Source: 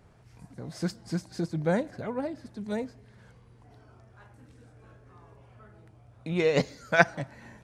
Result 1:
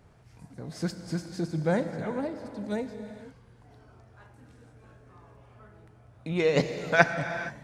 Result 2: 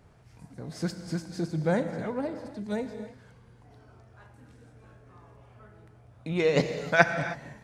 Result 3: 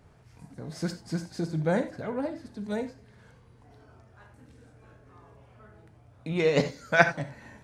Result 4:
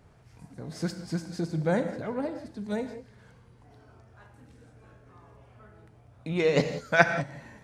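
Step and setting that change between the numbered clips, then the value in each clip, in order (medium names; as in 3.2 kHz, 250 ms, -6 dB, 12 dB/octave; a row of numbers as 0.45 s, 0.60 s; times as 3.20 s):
gated-style reverb, gate: 500 ms, 340 ms, 110 ms, 210 ms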